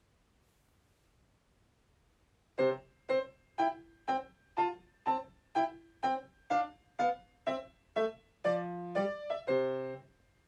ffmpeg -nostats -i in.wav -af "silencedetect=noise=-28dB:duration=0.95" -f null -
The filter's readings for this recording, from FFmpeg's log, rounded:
silence_start: 0.00
silence_end: 2.59 | silence_duration: 2.59